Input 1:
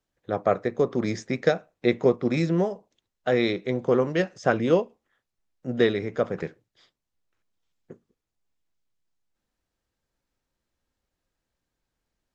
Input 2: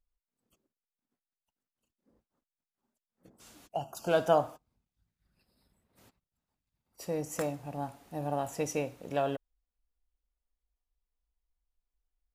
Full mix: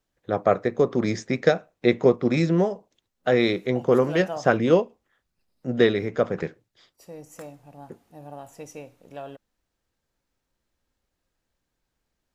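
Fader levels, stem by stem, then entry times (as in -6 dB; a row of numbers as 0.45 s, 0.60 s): +2.5 dB, -7.5 dB; 0.00 s, 0.00 s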